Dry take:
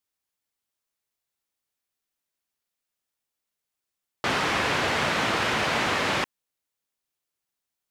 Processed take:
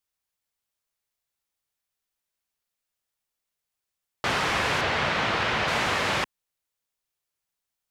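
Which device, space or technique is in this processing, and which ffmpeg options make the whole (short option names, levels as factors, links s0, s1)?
low shelf boost with a cut just above: -filter_complex "[0:a]lowshelf=f=70:g=5.5,equalizer=f=280:t=o:w=0.91:g=-4.5,asettb=1/sr,asplit=3[s0][s1][s2];[s0]atrim=end=4.814[s3];[s1]atrim=start=4.81:end=5.68,asetpts=PTS-STARTPTS,afade=t=in:d=0.004:c=qsin,afade=t=out:st=0.866:d=0.004:c=qsin,acrossover=split=5600[s4][s5];[s5]acompressor=threshold=0.00178:ratio=4:attack=1:release=60[s6];[s4][s6]amix=inputs=2:normalize=0[s7];[s2]atrim=start=5.676[s8];[s3][s7]acrossfade=d=0.004:c1=hsin:c2=qsin[s9];[s9][s8]acrossfade=d=0.004:c1=qsin:c2=hsin"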